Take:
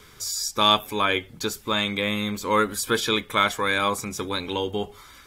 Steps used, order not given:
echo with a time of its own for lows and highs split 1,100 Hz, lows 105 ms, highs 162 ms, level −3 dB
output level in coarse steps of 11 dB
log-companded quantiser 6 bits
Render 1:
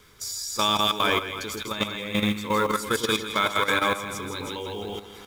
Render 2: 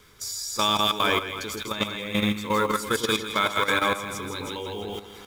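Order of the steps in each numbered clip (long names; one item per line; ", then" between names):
echo with a time of its own for lows and highs, then log-companded quantiser, then output level in coarse steps
log-companded quantiser, then echo with a time of its own for lows and highs, then output level in coarse steps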